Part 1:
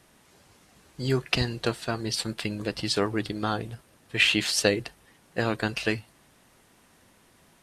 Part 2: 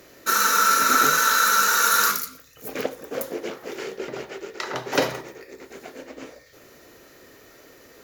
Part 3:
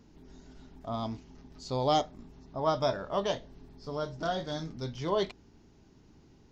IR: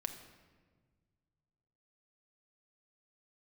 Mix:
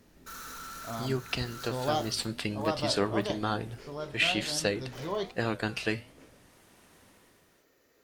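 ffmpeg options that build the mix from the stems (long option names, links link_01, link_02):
-filter_complex "[0:a]dynaudnorm=framelen=110:gausssize=9:maxgain=11dB,volume=-6.5dB,asplit=2[link_01][link_02];[1:a]asoftclip=type=hard:threshold=-24.5dB,volume=-13dB[link_03];[2:a]volume=0.5dB[link_04];[link_02]apad=whole_len=354428[link_05];[link_03][link_05]sidechaincompress=threshold=-29dB:ratio=8:attack=6.2:release=286[link_06];[link_01][link_06][link_04]amix=inputs=3:normalize=0,flanger=delay=9.1:depth=6.7:regen=-83:speed=1.1:shape=triangular"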